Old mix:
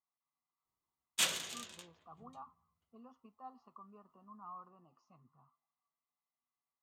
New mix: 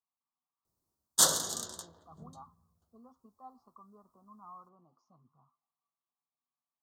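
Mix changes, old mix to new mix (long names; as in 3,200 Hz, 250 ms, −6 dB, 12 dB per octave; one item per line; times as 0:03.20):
background +11.5 dB
master: add Butterworth band-reject 2,400 Hz, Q 0.81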